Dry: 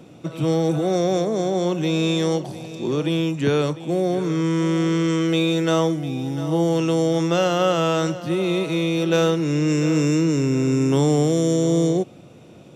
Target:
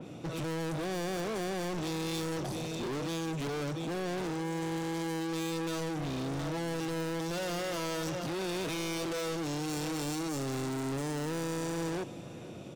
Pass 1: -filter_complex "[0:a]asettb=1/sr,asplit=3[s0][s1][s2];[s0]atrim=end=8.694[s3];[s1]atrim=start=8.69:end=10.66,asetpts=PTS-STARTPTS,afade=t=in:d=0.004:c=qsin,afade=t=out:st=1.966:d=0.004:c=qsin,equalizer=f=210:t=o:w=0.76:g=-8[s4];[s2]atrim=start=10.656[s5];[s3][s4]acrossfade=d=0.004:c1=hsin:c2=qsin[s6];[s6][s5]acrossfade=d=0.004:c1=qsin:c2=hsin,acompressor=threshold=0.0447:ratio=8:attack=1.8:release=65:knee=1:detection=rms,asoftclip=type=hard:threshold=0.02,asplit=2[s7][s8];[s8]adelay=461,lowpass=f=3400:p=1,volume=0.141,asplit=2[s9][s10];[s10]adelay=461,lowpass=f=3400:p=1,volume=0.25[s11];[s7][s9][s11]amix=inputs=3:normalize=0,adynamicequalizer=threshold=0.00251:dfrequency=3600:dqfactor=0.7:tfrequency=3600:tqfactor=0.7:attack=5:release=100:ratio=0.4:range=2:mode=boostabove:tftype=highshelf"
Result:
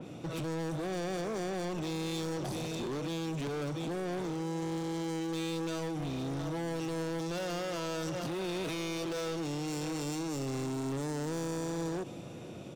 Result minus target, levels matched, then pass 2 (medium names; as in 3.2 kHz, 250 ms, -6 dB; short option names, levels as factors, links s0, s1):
compression: peak gain reduction +6.5 dB
-filter_complex "[0:a]asettb=1/sr,asplit=3[s0][s1][s2];[s0]atrim=end=8.694[s3];[s1]atrim=start=8.69:end=10.66,asetpts=PTS-STARTPTS,afade=t=in:d=0.004:c=qsin,afade=t=out:st=1.966:d=0.004:c=qsin,equalizer=f=210:t=o:w=0.76:g=-8[s4];[s2]atrim=start=10.656[s5];[s3][s4]acrossfade=d=0.004:c1=hsin:c2=qsin[s6];[s6][s5]acrossfade=d=0.004:c1=qsin:c2=hsin,acompressor=threshold=0.106:ratio=8:attack=1.8:release=65:knee=1:detection=rms,asoftclip=type=hard:threshold=0.02,asplit=2[s7][s8];[s8]adelay=461,lowpass=f=3400:p=1,volume=0.141,asplit=2[s9][s10];[s10]adelay=461,lowpass=f=3400:p=1,volume=0.25[s11];[s7][s9][s11]amix=inputs=3:normalize=0,adynamicequalizer=threshold=0.00251:dfrequency=3600:dqfactor=0.7:tfrequency=3600:tqfactor=0.7:attack=5:release=100:ratio=0.4:range=2:mode=boostabove:tftype=highshelf"